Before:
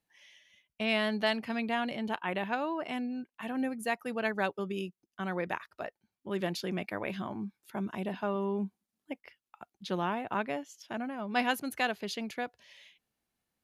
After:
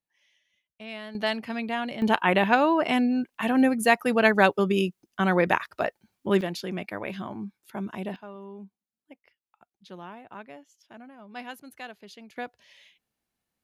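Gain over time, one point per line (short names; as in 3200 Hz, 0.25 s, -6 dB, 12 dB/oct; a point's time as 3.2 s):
-9.5 dB
from 1.15 s +2 dB
from 2.02 s +12 dB
from 6.41 s +2 dB
from 8.16 s -10 dB
from 12.36 s +0.5 dB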